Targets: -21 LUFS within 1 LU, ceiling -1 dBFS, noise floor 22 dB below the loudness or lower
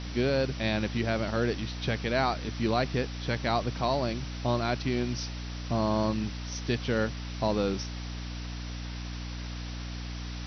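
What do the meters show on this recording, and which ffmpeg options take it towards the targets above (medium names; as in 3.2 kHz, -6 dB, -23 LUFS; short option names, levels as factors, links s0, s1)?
hum 60 Hz; highest harmonic 300 Hz; hum level -35 dBFS; noise floor -37 dBFS; noise floor target -53 dBFS; loudness -31.0 LUFS; peak level -15.0 dBFS; loudness target -21.0 LUFS
-> -af "bandreject=f=60:t=h:w=6,bandreject=f=120:t=h:w=6,bandreject=f=180:t=h:w=6,bandreject=f=240:t=h:w=6,bandreject=f=300:t=h:w=6"
-af "afftdn=nr=16:nf=-37"
-af "volume=3.16"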